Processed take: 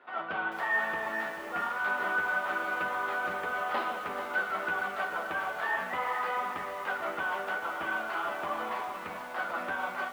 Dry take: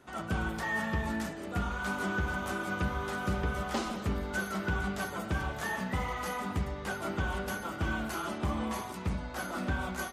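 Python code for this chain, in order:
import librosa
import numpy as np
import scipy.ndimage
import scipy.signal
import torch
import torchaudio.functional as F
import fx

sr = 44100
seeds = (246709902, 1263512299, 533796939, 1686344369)

y = fx.bandpass_edges(x, sr, low_hz=700.0, high_hz=4300.0)
y = fx.air_absorb(y, sr, metres=390.0)
y = fx.doubler(y, sr, ms=12.0, db=-9.0)
y = fx.echo_crushed(y, sr, ms=438, feedback_pct=55, bits=9, wet_db=-9)
y = y * librosa.db_to_amplitude(7.0)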